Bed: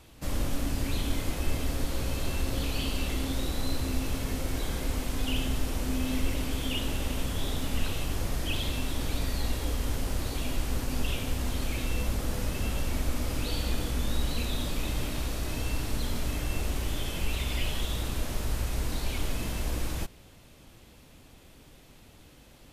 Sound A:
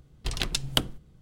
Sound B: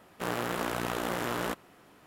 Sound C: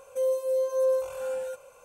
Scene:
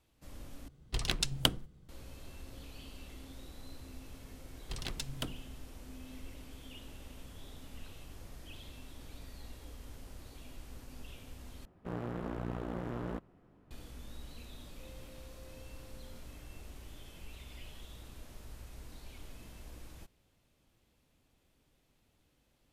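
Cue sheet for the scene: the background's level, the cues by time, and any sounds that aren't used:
bed -19 dB
0.68 replace with A -3.5 dB
4.45 add A -8.5 dB + soft clip -19.5 dBFS
11.65 replace with B -12.5 dB + tilt -4.5 dB/oct
14.65 add C -18 dB + compressor 5:1, threshold -41 dBFS

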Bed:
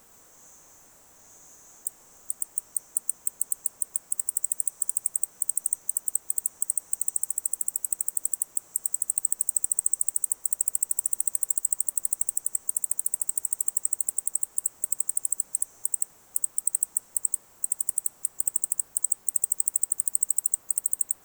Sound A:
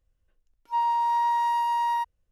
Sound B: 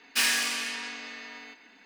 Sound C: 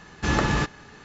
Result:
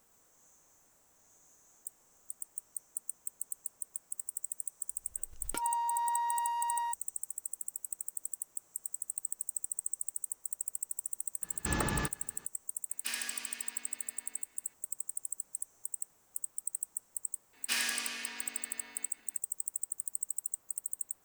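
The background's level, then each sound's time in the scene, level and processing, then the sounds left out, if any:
bed -12 dB
4.89 add A -9 dB + backwards sustainer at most 53 dB/s
11.42 add C -10.5 dB
12.89 add B -15 dB
17.53 add B -8.5 dB

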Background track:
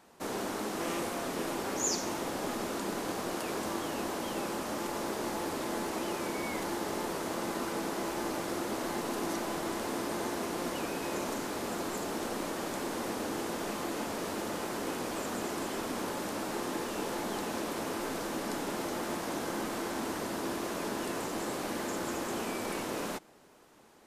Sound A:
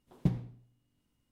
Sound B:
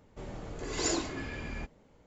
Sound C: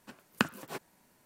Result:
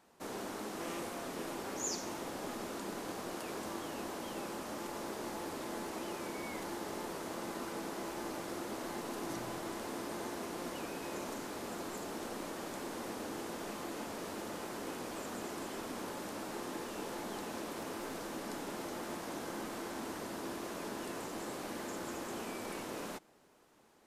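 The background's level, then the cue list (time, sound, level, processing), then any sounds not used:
background track -6.5 dB
9.05 add A -5.5 dB + compressor, threshold -42 dBFS
17.42 add C -8 dB + compressor, threshold -52 dBFS
not used: B

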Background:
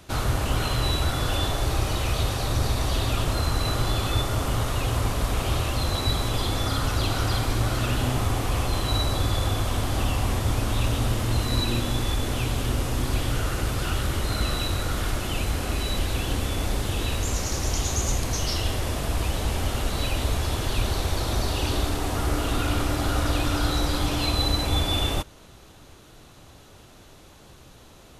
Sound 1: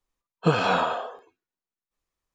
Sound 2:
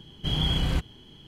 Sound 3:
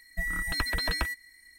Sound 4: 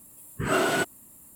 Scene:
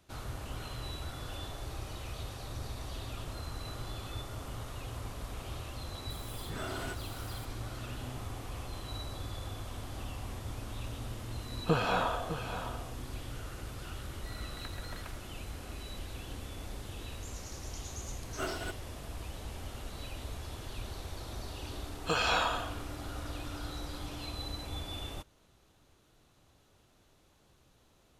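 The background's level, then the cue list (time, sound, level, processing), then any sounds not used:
background -16.5 dB
6.1 add 4 -3.5 dB + compressor 4:1, threshold -36 dBFS
11.23 add 1 -7.5 dB + echo 0.607 s -10 dB
14.05 add 3 -15 dB + Wiener smoothing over 25 samples
17.88 add 4 -11.5 dB + upward expander 2.5:1, over -37 dBFS
21.63 add 1 -7 dB + tilt +4 dB/oct
not used: 2

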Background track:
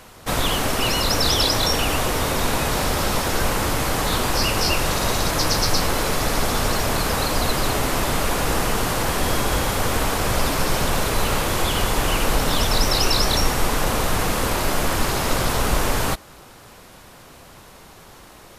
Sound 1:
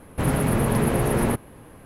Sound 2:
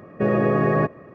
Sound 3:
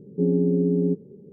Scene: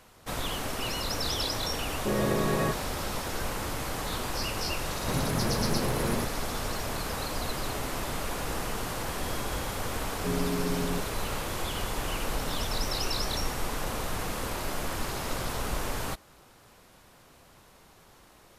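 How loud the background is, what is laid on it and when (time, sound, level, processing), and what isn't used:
background track -11.5 dB
1.85 add 2 -8.5 dB + dispersion highs, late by 57 ms, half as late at 2000 Hz
4.89 add 1 -8.5 dB
10.06 add 3 -10.5 dB

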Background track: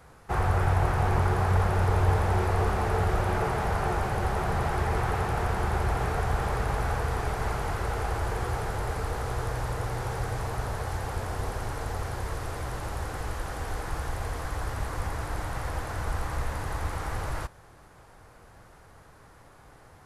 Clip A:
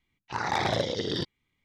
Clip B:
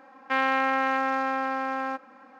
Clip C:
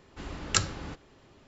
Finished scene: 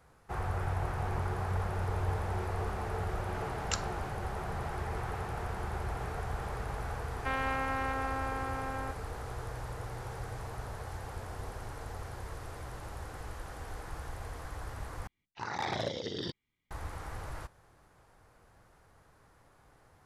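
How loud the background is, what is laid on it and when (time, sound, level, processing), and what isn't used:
background track -9.5 dB
3.17 add C -9.5 dB
6.95 add B -9.5 dB
15.07 replace with A -7.5 dB

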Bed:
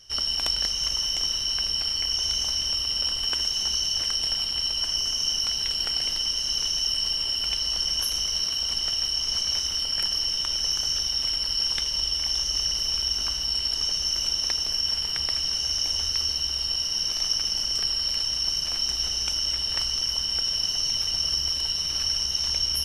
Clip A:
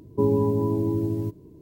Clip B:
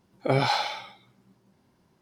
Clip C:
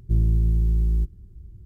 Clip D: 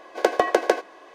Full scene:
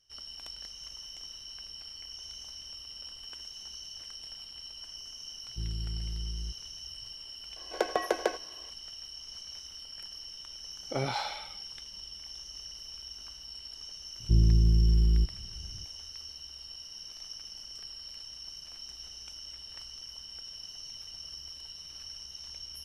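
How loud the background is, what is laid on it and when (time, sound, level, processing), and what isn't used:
bed -18.5 dB
5.47 add C -16 dB
7.56 add D -9.5 dB
10.66 add B -9 dB
14.2 add C -2.5 dB + bell 240 Hz +3.5 dB 1 oct
not used: A

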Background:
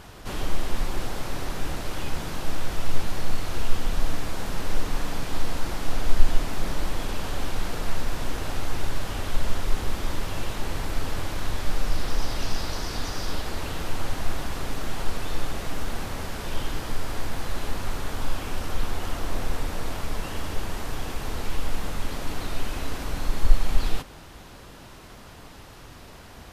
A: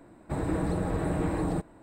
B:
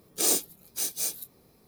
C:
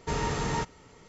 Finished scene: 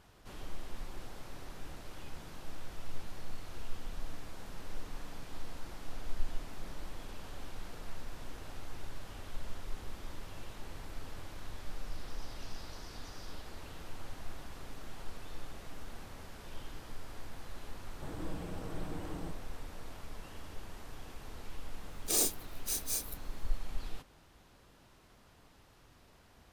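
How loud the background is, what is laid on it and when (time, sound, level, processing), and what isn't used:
background -16.5 dB
17.71 add A -14.5 dB
21.9 add B -5.5 dB
not used: C

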